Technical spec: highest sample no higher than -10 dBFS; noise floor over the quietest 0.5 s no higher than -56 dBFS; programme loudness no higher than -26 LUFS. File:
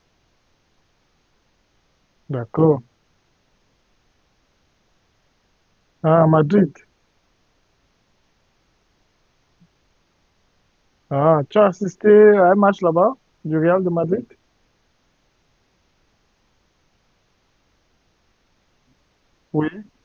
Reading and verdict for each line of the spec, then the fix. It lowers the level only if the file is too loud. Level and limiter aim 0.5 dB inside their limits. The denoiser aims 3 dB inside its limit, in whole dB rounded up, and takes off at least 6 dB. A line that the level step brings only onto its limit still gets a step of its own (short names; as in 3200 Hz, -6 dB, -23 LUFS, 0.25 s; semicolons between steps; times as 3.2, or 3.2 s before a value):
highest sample -2.5 dBFS: fail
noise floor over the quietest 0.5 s -64 dBFS: OK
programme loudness -17.0 LUFS: fail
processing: gain -9.5 dB